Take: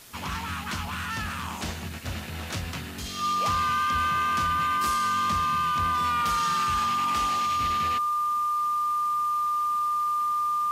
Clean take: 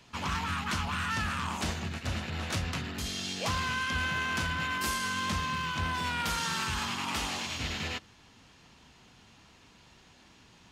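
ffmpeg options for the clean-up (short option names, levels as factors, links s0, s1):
-af "bandreject=f=1200:w=30,afwtdn=0.004"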